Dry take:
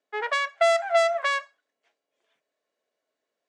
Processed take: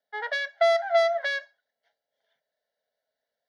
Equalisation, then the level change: fixed phaser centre 1700 Hz, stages 8; 0.0 dB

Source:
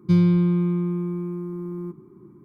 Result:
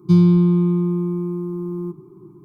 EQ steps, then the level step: fixed phaser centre 360 Hz, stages 8; +5.5 dB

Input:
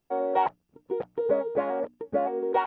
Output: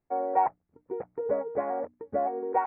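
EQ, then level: elliptic low-pass 2200 Hz, stop band 40 dB; dynamic EQ 750 Hz, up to +6 dB, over -40 dBFS, Q 3.8; bell 87 Hz +10 dB 0.24 oct; -4.0 dB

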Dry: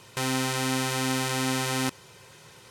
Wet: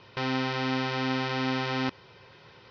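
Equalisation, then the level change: steep low-pass 5500 Hz 72 dB/oct; air absorption 120 m; bell 150 Hz -3.5 dB 0.52 oct; 0.0 dB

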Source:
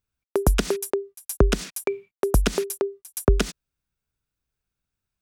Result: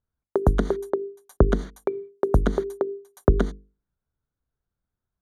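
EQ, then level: running mean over 17 samples; notches 50/100/150/200/250/300/350/400/450 Hz; +2.5 dB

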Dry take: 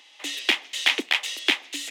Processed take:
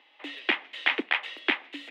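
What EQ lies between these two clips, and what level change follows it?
dynamic EQ 1500 Hz, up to +5 dB, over -36 dBFS, Q 1; air absorption 490 m; 0.0 dB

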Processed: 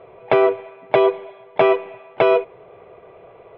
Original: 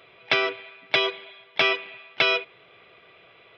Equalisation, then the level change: LPF 2200 Hz 12 dB/oct; tilt -3 dB/oct; band shelf 640 Hz +10 dB; +1.5 dB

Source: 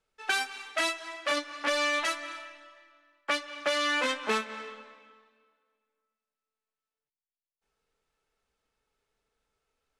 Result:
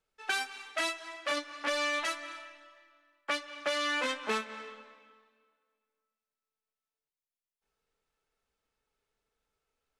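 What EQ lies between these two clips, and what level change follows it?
none; -3.5 dB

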